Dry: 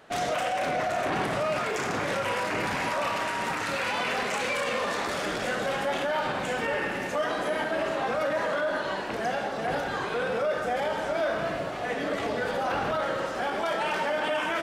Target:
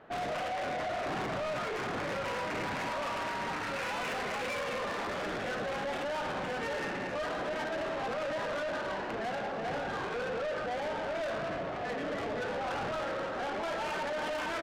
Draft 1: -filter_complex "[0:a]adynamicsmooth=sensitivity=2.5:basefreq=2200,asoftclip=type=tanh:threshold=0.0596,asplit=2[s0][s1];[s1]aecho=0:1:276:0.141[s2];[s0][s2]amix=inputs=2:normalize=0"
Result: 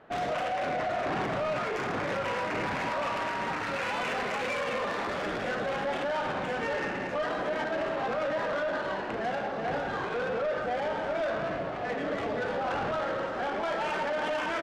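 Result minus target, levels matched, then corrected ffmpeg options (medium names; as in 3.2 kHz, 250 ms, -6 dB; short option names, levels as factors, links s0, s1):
saturation: distortion -8 dB
-filter_complex "[0:a]adynamicsmooth=sensitivity=2.5:basefreq=2200,asoftclip=type=tanh:threshold=0.0251,asplit=2[s0][s1];[s1]aecho=0:1:276:0.141[s2];[s0][s2]amix=inputs=2:normalize=0"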